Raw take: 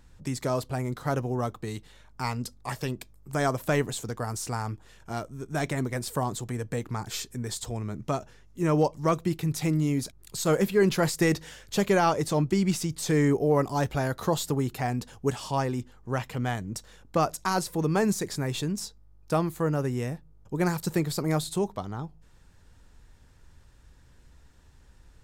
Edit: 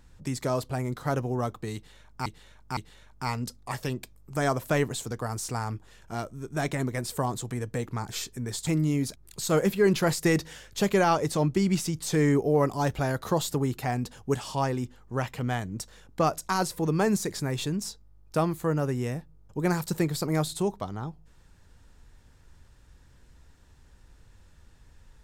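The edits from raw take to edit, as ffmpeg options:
-filter_complex "[0:a]asplit=4[s0][s1][s2][s3];[s0]atrim=end=2.262[s4];[s1]atrim=start=1.748:end=2.262[s5];[s2]atrim=start=1.748:end=7.652[s6];[s3]atrim=start=9.628[s7];[s4][s5]acrossfade=d=0.004:c1=hsin:c2=hsin[s8];[s8][s6]acrossfade=d=0.004:c1=hsin:c2=hsin[s9];[s9][s7]acrossfade=d=0.004:c1=hsin:c2=hsin"

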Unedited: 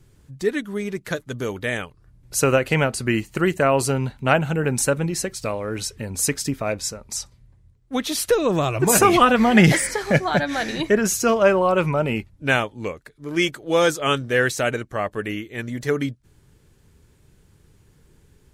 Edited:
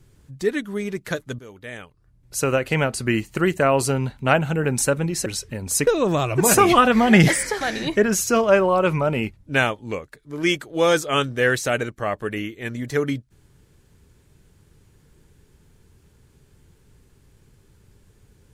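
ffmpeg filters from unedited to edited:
-filter_complex "[0:a]asplit=5[s0][s1][s2][s3][s4];[s0]atrim=end=1.39,asetpts=PTS-STARTPTS,afade=t=out:st=1.386:d=0.004:c=hsin:silence=0.133352[s5];[s1]atrim=start=1.39:end=5.262,asetpts=PTS-STARTPTS,afade=t=in:d=1.68:silence=0.133352[s6];[s2]atrim=start=5.738:end=6.352[s7];[s3]atrim=start=8.308:end=10.052[s8];[s4]atrim=start=10.538[s9];[s5][s6]concat=n=2:v=0:a=1[s10];[s10][s7]acrossfade=d=0.004:c1=hsin:c2=hsin[s11];[s11][s8]acrossfade=d=0.004:c1=hsin:c2=hsin[s12];[s12][s9]acrossfade=d=0.004:c1=hsin:c2=hsin"

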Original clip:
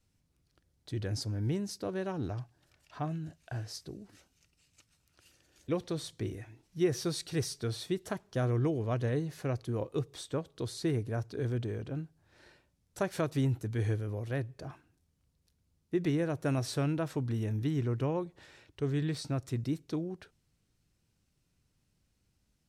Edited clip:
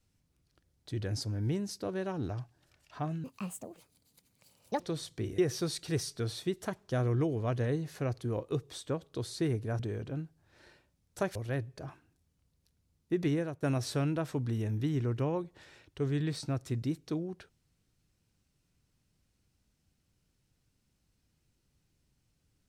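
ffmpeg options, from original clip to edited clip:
-filter_complex "[0:a]asplit=7[s0][s1][s2][s3][s4][s5][s6];[s0]atrim=end=3.244[s7];[s1]atrim=start=3.24:end=5.82,asetpts=PTS-STARTPTS,asetrate=72765,aresample=44100,atrim=end_sample=68956,asetpts=PTS-STARTPTS[s8];[s2]atrim=start=5.816:end=6.402[s9];[s3]atrim=start=6.818:end=11.232[s10];[s4]atrim=start=11.588:end=13.152[s11];[s5]atrim=start=14.168:end=16.44,asetpts=PTS-STARTPTS,afade=t=out:st=1.992:d=0.28:silence=0.211349[s12];[s6]atrim=start=16.44,asetpts=PTS-STARTPTS,afade=t=in:d=0.004:c=hsin:silence=0.211349[s13];[s7][s8]acrossfade=d=0.004:c1=hsin:c2=hsin[s14];[s14][s9]acrossfade=d=0.004:c1=hsin:c2=hsin[s15];[s15][s10]acrossfade=d=0.004:c1=hsin:c2=hsin[s16];[s16][s11]acrossfade=d=0.004:c1=hsin:c2=hsin[s17];[s12][s13]concat=n=2:v=0:a=1[s18];[s17][s18]acrossfade=d=0.004:c1=hsin:c2=hsin"

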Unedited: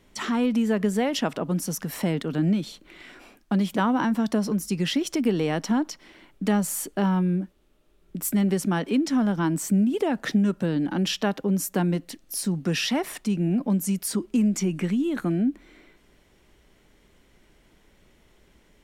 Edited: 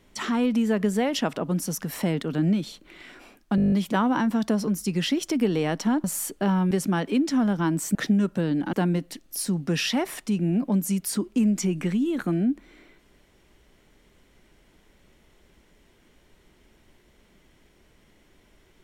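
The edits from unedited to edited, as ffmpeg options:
-filter_complex "[0:a]asplit=13[s0][s1][s2][s3][s4][s5][s6][s7][s8][s9][s10][s11][s12];[s0]atrim=end=3.582[s13];[s1]atrim=start=3.558:end=3.582[s14];[s2]atrim=start=3.558:end=3.582[s15];[s3]atrim=start=3.558:end=3.582[s16];[s4]atrim=start=3.558:end=3.582[s17];[s5]atrim=start=3.558:end=3.582[s18];[s6]atrim=start=3.558:end=3.582[s19];[s7]atrim=start=3.558:end=3.582[s20];[s8]atrim=start=3.558:end=5.882[s21];[s9]atrim=start=6.598:end=7.272[s22];[s10]atrim=start=8.498:end=9.742[s23];[s11]atrim=start=10.198:end=10.982[s24];[s12]atrim=start=11.708[s25];[s13][s14]acrossfade=d=0.004:c1=hsin:c2=hsin[s26];[s26][s15]acrossfade=d=0.004:c1=hsin:c2=hsin[s27];[s27][s16]acrossfade=d=0.004:c1=hsin:c2=hsin[s28];[s28][s17]acrossfade=d=0.004:c1=hsin:c2=hsin[s29];[s29][s18]acrossfade=d=0.004:c1=hsin:c2=hsin[s30];[s30][s19]acrossfade=d=0.004:c1=hsin:c2=hsin[s31];[s31][s20]acrossfade=d=0.004:c1=hsin:c2=hsin[s32];[s32][s21]acrossfade=d=0.004:c1=hsin:c2=hsin[s33];[s33][s22]acrossfade=d=0.004:c1=hsin:c2=hsin[s34];[s34][s23]acrossfade=d=0.004:c1=hsin:c2=hsin[s35];[s35][s24]acrossfade=d=0.004:c1=hsin:c2=hsin[s36];[s36][s25]acrossfade=d=0.004:c1=hsin:c2=hsin"

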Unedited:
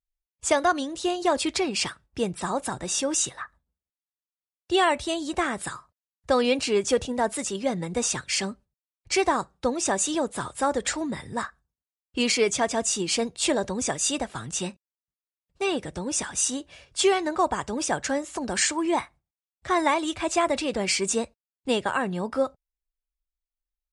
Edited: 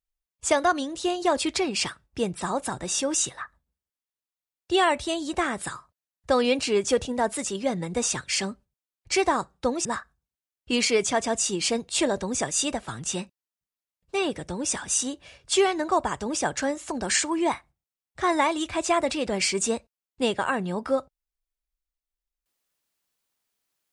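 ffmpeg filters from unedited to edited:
-filter_complex "[0:a]asplit=2[s0][s1];[s0]atrim=end=9.852[s2];[s1]atrim=start=11.318[s3];[s2][s3]acrossfade=d=0.004:c1=hsin:c2=hsin"

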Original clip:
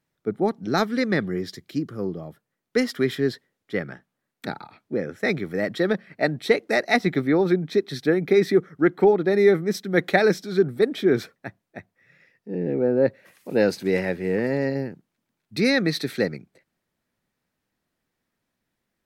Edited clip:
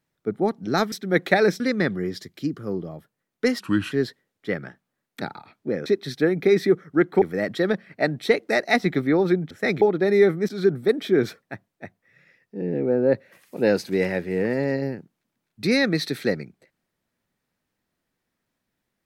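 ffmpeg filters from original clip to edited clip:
-filter_complex "[0:a]asplit=10[s0][s1][s2][s3][s4][s5][s6][s7][s8][s9];[s0]atrim=end=0.922[s10];[s1]atrim=start=9.738:end=10.422[s11];[s2]atrim=start=0.918:end=2.924[s12];[s3]atrim=start=2.92:end=3.17,asetpts=PTS-STARTPTS,asetrate=34839,aresample=44100[s13];[s4]atrim=start=3.166:end=5.112[s14];[s5]atrim=start=7.708:end=9.072[s15];[s6]atrim=start=5.418:end=7.712[s16];[s7]atrim=start=5.108:end=5.422[s17];[s8]atrim=start=9.068:end=9.742[s18];[s9]atrim=start=10.418[s19];[s10][s11]acrossfade=d=0.004:c1=hsin:c2=hsin[s20];[s20][s12]acrossfade=d=0.004:c1=hsin:c2=hsin[s21];[s21][s13]acrossfade=d=0.004:c1=hsin:c2=hsin[s22];[s22][s14]acrossfade=d=0.004:c1=hsin:c2=hsin[s23];[s23][s15]acrossfade=d=0.004:c1=hsin:c2=hsin[s24];[s24][s16]acrossfade=d=0.004:c1=hsin:c2=hsin[s25];[s25][s17]acrossfade=d=0.004:c1=hsin:c2=hsin[s26];[s26][s18]acrossfade=d=0.004:c1=hsin:c2=hsin[s27];[s27][s19]acrossfade=d=0.004:c1=hsin:c2=hsin"

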